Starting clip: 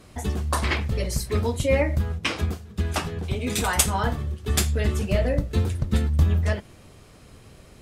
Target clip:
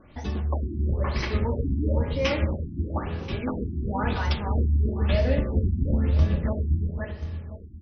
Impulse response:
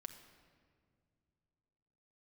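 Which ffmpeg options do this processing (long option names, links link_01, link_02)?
-filter_complex "[0:a]aecho=1:1:517|1034|1551|2068:0.631|0.177|0.0495|0.0139[link_01];[1:a]atrim=start_sample=2205,asetrate=66150,aresample=44100[link_02];[link_01][link_02]afir=irnorm=-1:irlink=0,afftfilt=real='re*lt(b*sr/1024,350*pow(6400/350,0.5+0.5*sin(2*PI*1*pts/sr)))':imag='im*lt(b*sr/1024,350*pow(6400/350,0.5+0.5*sin(2*PI*1*pts/sr)))':win_size=1024:overlap=0.75,volume=6dB"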